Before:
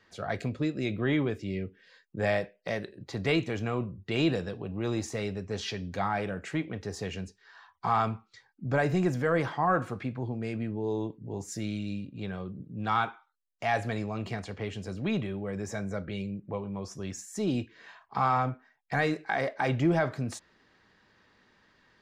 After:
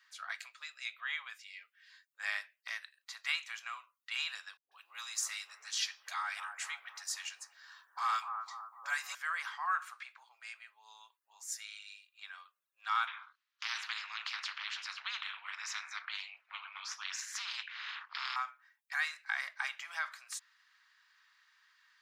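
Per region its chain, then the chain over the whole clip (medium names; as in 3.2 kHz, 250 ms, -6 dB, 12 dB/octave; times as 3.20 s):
4.57–9.15 s: tone controls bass +9 dB, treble +7 dB + phase dispersion highs, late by 145 ms, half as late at 330 Hz + bucket-brigade echo 249 ms, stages 2048, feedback 54%, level -6 dB
13.07–18.36 s: ring modulator 110 Hz + distance through air 280 m + spectrum-flattening compressor 4:1
whole clip: steep high-pass 1.1 kHz 36 dB/octave; treble shelf 8.2 kHz +9 dB; trim -2.5 dB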